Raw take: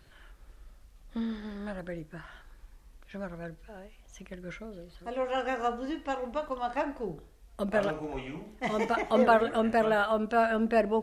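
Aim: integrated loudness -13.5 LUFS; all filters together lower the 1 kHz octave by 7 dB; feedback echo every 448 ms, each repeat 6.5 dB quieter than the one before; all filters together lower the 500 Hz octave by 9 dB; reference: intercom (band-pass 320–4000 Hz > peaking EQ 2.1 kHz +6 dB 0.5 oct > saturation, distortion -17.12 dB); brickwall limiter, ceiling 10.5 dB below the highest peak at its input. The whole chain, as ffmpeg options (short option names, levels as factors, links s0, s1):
-af "equalizer=f=500:t=o:g=-9,equalizer=f=1000:t=o:g=-6.5,alimiter=level_in=1.58:limit=0.0631:level=0:latency=1,volume=0.631,highpass=320,lowpass=4000,equalizer=f=2100:t=o:w=0.5:g=6,aecho=1:1:448|896|1344|1792|2240|2688:0.473|0.222|0.105|0.0491|0.0231|0.0109,asoftclip=threshold=0.0282,volume=26.6"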